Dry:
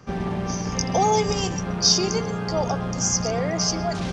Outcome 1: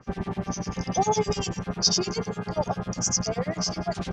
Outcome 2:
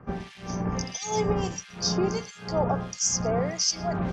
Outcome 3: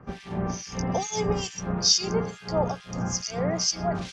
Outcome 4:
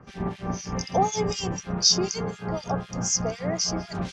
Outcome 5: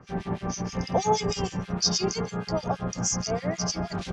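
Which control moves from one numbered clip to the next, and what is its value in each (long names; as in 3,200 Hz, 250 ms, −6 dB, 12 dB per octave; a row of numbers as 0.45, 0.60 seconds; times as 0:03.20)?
two-band tremolo in antiphase, speed: 10, 1.5, 2.3, 4, 6.3 Hertz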